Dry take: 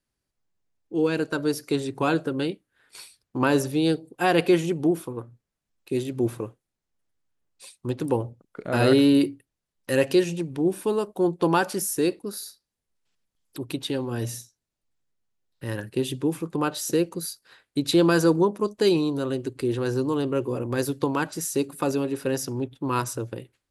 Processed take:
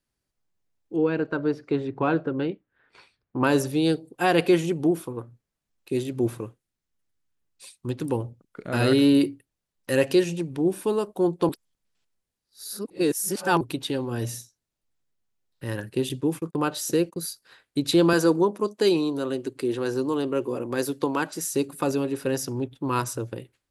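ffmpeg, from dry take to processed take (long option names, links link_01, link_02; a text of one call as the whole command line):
ffmpeg -i in.wav -filter_complex "[0:a]asettb=1/sr,asplit=3[link_01][link_02][link_03];[link_01]atrim=end=0.964[link_04];[link_02]atrim=start=0.96:end=3.44,asetpts=PTS-STARTPTS,afade=type=in:duration=0.004:curve=qsin,afade=type=out:start_time=2.476:duration=0.004:curve=qsin,lowpass=2100[link_05];[link_03]atrim=start=3.436[link_06];[link_04][link_05]acrossfade=duration=0.004:curve1=hsin:curve2=qsin[link_07];[link_07][link_06]acrossfade=duration=0.004:curve1=qsin:curve2=hsin,asettb=1/sr,asplit=3[link_08][link_09][link_10];[link_08]atrim=end=6.384[link_11];[link_09]atrim=start=6.38:end=9.02,asetpts=PTS-STARTPTS,afade=type=in:duration=0.004:curve=qsin,afade=type=out:start_time=2.636:duration=0.004:curve=qsin,equalizer=frequency=650:width=0.85:gain=-4.5[link_12];[link_10]atrim=start=9.016[link_13];[link_11][link_12]acrossfade=duration=0.004:curve1=hsin:curve2=qsin[link_14];[link_14][link_13]acrossfade=duration=0.004:curve1=qsin:curve2=hsin,asettb=1/sr,asplit=3[link_15][link_16][link_17];[link_15]atrim=end=16.094[link_18];[link_16]atrim=start=16.09:end=17.22,asetpts=PTS-STARTPTS,afade=type=in:duration=0.004:curve=qsin,afade=type=out:start_time=1.126:duration=0.004:curve=qsin,agate=range=-33dB:threshold=-40dB:ratio=16:release=100:detection=peak[link_19];[link_17]atrim=start=17.216[link_20];[link_18][link_19]acrossfade=duration=0.004:curve1=hsin:curve2=qsin[link_21];[link_21][link_20]acrossfade=duration=0.004:curve1=qsin:curve2=hsin,asettb=1/sr,asplit=3[link_22][link_23][link_24];[link_22]atrim=end=18.134[link_25];[link_23]atrim=start=18.13:end=21.5,asetpts=PTS-STARTPTS,afade=type=in:duration=0.004:curve=qsin,afade=type=out:start_time=3.366:duration=0.004:curve=qsin,highpass=190[link_26];[link_24]atrim=start=21.496[link_27];[link_25][link_26]acrossfade=duration=0.004:curve1=hsin:curve2=qsin[link_28];[link_28][link_27]acrossfade=duration=0.004:curve1=qsin:curve2=hsin,asplit=3[link_29][link_30][link_31];[link_29]atrim=end=11.492[link_32];[link_30]atrim=start=11.488:end=13.612,asetpts=PTS-STARTPTS,areverse[link_33];[link_31]atrim=start=13.608[link_34];[link_32][link_33]acrossfade=duration=0.004:curve1=hsin:curve2=hsin[link_35];[link_35][link_34]acrossfade=duration=0.004:curve1=hsin:curve2=hsin" out.wav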